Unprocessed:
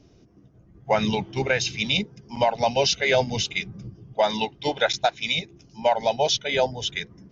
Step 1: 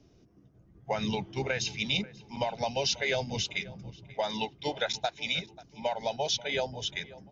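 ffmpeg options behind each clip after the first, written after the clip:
ffmpeg -i in.wav -filter_complex "[0:a]acrossover=split=140|3000[link_01][link_02][link_03];[link_02]acompressor=threshold=-21dB:ratio=6[link_04];[link_01][link_04][link_03]amix=inputs=3:normalize=0,asplit=2[link_05][link_06];[link_06]adelay=537,lowpass=frequency=2700:poles=1,volume=-19dB,asplit=2[link_07][link_08];[link_08]adelay=537,lowpass=frequency=2700:poles=1,volume=0.37,asplit=2[link_09][link_10];[link_10]adelay=537,lowpass=frequency=2700:poles=1,volume=0.37[link_11];[link_05][link_07][link_09][link_11]amix=inputs=4:normalize=0,volume=-6dB" out.wav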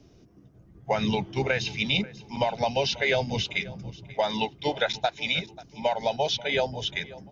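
ffmpeg -i in.wav -filter_complex "[0:a]acrossover=split=4400[link_01][link_02];[link_02]acompressor=threshold=-52dB:ratio=4:attack=1:release=60[link_03];[link_01][link_03]amix=inputs=2:normalize=0,volume=5.5dB" out.wav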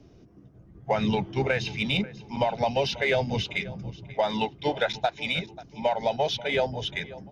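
ffmpeg -i in.wav -filter_complex "[0:a]highshelf=frequency=3900:gain=-9,asplit=2[link_01][link_02];[link_02]asoftclip=type=tanh:threshold=-29dB,volume=-10.5dB[link_03];[link_01][link_03]amix=inputs=2:normalize=0" out.wav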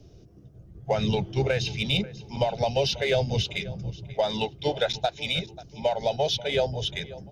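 ffmpeg -i in.wav -af "equalizer=frequency=250:width_type=o:width=1:gain=-10,equalizer=frequency=1000:width_type=o:width=1:gain=-10,equalizer=frequency=2000:width_type=o:width=1:gain=-9,volume=6dB" out.wav

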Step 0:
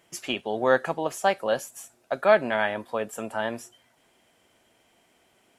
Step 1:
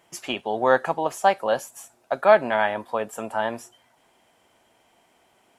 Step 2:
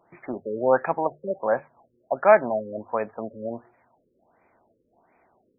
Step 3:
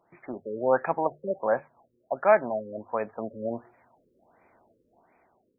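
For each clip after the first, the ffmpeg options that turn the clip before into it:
ffmpeg -i in.wav -af "equalizer=frequency=890:width_type=o:width=0.92:gain=6.5" out.wav
ffmpeg -i in.wav -af "bandreject=frequency=50:width_type=h:width=6,bandreject=frequency=100:width_type=h:width=6,bandreject=frequency=150:width_type=h:width=6,afftfilt=real='re*lt(b*sr/1024,540*pow(2600/540,0.5+0.5*sin(2*PI*1.4*pts/sr)))':imag='im*lt(b*sr/1024,540*pow(2600/540,0.5+0.5*sin(2*PI*1.4*pts/sr)))':win_size=1024:overlap=0.75" out.wav
ffmpeg -i in.wav -af "dynaudnorm=framelen=240:gausssize=7:maxgain=6.5dB,volume=-5dB" out.wav

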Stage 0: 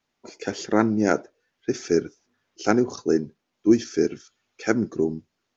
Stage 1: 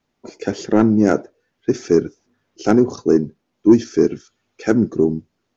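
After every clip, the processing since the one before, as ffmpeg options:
ffmpeg -i in.wav -af "acontrast=82,tiltshelf=frequency=720:gain=4.5,volume=-2dB" out.wav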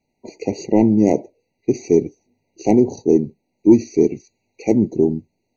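ffmpeg -i in.wav -af "afftfilt=real='re*eq(mod(floor(b*sr/1024/960),2),0)':imag='im*eq(mod(floor(b*sr/1024/960),2),0)':win_size=1024:overlap=0.75" out.wav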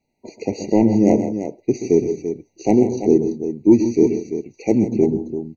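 ffmpeg -i in.wav -af "aecho=1:1:128|138|162|339:0.299|0.112|0.2|0.335,volume=-1dB" out.wav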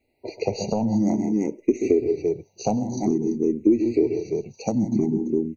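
ffmpeg -i in.wav -filter_complex "[0:a]acompressor=threshold=-21dB:ratio=6,asplit=2[link_01][link_02];[link_02]afreqshift=0.52[link_03];[link_01][link_03]amix=inputs=2:normalize=1,volume=6dB" out.wav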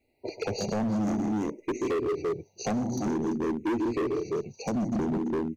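ffmpeg -i in.wav -af "asoftclip=type=hard:threshold=-23.5dB,volume=-1.5dB" out.wav

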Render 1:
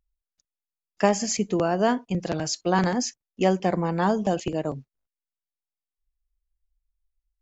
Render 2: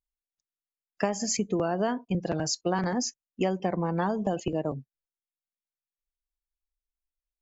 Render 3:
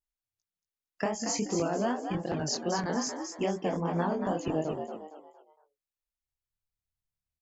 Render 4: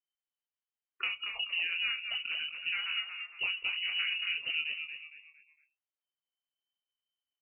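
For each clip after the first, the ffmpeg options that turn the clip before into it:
ffmpeg -i in.wav -af "afftdn=noise_reduction=15:noise_floor=-39,acompressor=threshold=-23dB:ratio=5" out.wav
ffmpeg -i in.wav -filter_complex "[0:a]flanger=delay=17.5:depth=7.9:speed=2.5,asplit=2[link_01][link_02];[link_02]asplit=4[link_03][link_04][link_05][link_06];[link_03]adelay=230,afreqshift=74,volume=-7dB[link_07];[link_04]adelay=460,afreqshift=148,volume=-15.9dB[link_08];[link_05]adelay=690,afreqshift=222,volume=-24.7dB[link_09];[link_06]adelay=920,afreqshift=296,volume=-33.6dB[link_10];[link_07][link_08][link_09][link_10]amix=inputs=4:normalize=0[link_11];[link_01][link_11]amix=inputs=2:normalize=0" out.wav
ffmpeg -i in.wav -af "lowpass=frequency=2600:width_type=q:width=0.5098,lowpass=frequency=2600:width_type=q:width=0.6013,lowpass=frequency=2600:width_type=q:width=0.9,lowpass=frequency=2600:width_type=q:width=2.563,afreqshift=-3100,volume=-4dB" out.wav

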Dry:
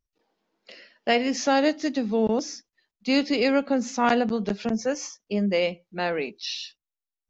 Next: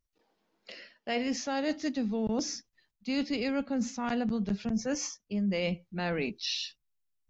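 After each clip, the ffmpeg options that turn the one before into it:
ffmpeg -i in.wav -af "asubboost=boost=4.5:cutoff=200,areverse,acompressor=threshold=-28dB:ratio=6,areverse" out.wav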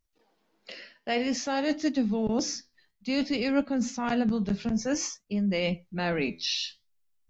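ffmpeg -i in.wav -af "flanger=delay=3.1:depth=9.2:regen=77:speed=0.54:shape=sinusoidal,volume=8dB" out.wav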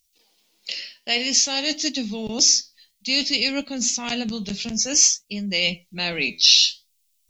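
ffmpeg -i in.wav -af "aexciter=amount=9.5:drive=2.3:freq=2300,volume=-2dB" out.wav

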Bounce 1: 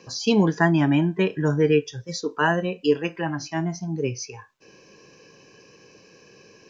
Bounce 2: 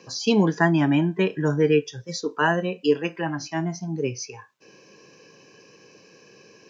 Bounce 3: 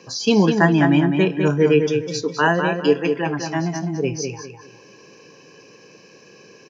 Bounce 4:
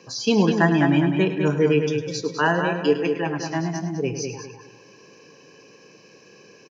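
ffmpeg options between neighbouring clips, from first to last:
ffmpeg -i in.wav -af "highpass=120" out.wav
ffmpeg -i in.wav -filter_complex "[0:a]asplit=2[link_01][link_02];[link_02]adelay=203,lowpass=frequency=3900:poles=1,volume=-5.5dB,asplit=2[link_03][link_04];[link_04]adelay=203,lowpass=frequency=3900:poles=1,volume=0.31,asplit=2[link_05][link_06];[link_06]adelay=203,lowpass=frequency=3900:poles=1,volume=0.31,asplit=2[link_07][link_08];[link_08]adelay=203,lowpass=frequency=3900:poles=1,volume=0.31[link_09];[link_01][link_03][link_05][link_07][link_09]amix=inputs=5:normalize=0,volume=3.5dB" out.wav
ffmpeg -i in.wav -filter_complex "[0:a]asplit=2[link_01][link_02];[link_02]adelay=105,volume=-11dB,highshelf=frequency=4000:gain=-2.36[link_03];[link_01][link_03]amix=inputs=2:normalize=0,volume=-3dB" out.wav

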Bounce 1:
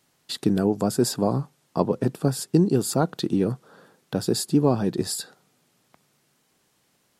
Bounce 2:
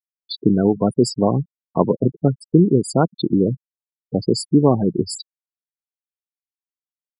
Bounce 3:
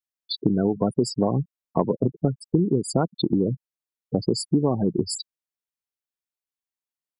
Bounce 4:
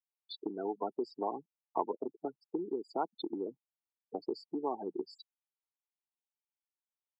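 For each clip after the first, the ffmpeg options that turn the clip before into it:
ffmpeg -i in.wav -af "afftfilt=real='re*gte(hypot(re,im),0.0794)':imag='im*gte(hypot(re,im),0.0794)':win_size=1024:overlap=0.75,volume=5.5dB" out.wav
ffmpeg -i in.wav -af "acompressor=threshold=-17dB:ratio=6" out.wav
ffmpeg -i in.wav -af "highpass=frequency=350:width=0.5412,highpass=frequency=350:width=1.3066,equalizer=frequency=540:width_type=q:width=4:gain=-10,equalizer=frequency=860:width_type=q:width=4:gain=9,equalizer=frequency=1700:width_type=q:width=4:gain=-10,lowpass=frequency=3400:width=0.5412,lowpass=frequency=3400:width=1.3066,volume=-8.5dB" out.wav

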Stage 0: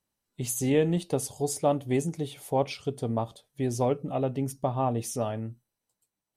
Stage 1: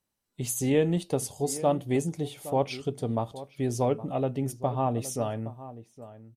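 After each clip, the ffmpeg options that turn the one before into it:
ffmpeg -i in.wav -filter_complex "[0:a]asplit=2[link_01][link_02];[link_02]adelay=816.3,volume=-15dB,highshelf=frequency=4000:gain=-18.4[link_03];[link_01][link_03]amix=inputs=2:normalize=0" out.wav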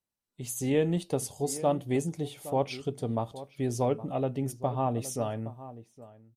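ffmpeg -i in.wav -af "dynaudnorm=framelen=120:gausssize=9:maxgain=7.5dB,volume=-9dB" out.wav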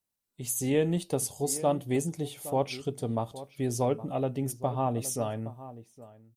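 ffmpeg -i in.wav -af "highshelf=frequency=7600:gain=8" out.wav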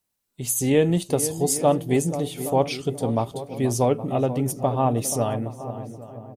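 ffmpeg -i in.wav -filter_complex "[0:a]asplit=2[link_01][link_02];[link_02]adelay=482,lowpass=frequency=1100:poles=1,volume=-11dB,asplit=2[link_03][link_04];[link_04]adelay=482,lowpass=frequency=1100:poles=1,volume=0.53,asplit=2[link_05][link_06];[link_06]adelay=482,lowpass=frequency=1100:poles=1,volume=0.53,asplit=2[link_07][link_08];[link_08]adelay=482,lowpass=frequency=1100:poles=1,volume=0.53,asplit=2[link_09][link_10];[link_10]adelay=482,lowpass=frequency=1100:poles=1,volume=0.53,asplit=2[link_11][link_12];[link_12]adelay=482,lowpass=frequency=1100:poles=1,volume=0.53[link_13];[link_01][link_03][link_05][link_07][link_09][link_11][link_13]amix=inputs=7:normalize=0,volume=7dB" out.wav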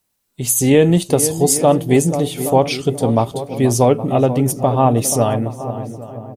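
ffmpeg -i in.wav -af "alimiter=level_in=9dB:limit=-1dB:release=50:level=0:latency=1,volume=-1dB" out.wav

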